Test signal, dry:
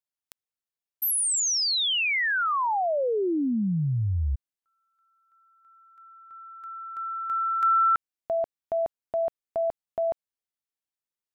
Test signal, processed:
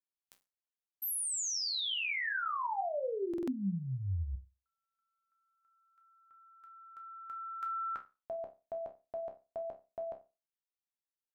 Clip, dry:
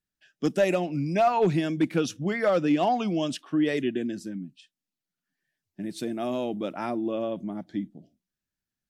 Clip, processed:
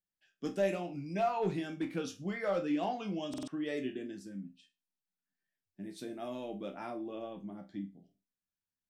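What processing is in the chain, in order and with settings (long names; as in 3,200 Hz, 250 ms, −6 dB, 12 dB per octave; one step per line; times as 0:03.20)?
resonators tuned to a chord C2 sus4, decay 0.28 s
buffer that repeats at 0:03.29, samples 2,048, times 3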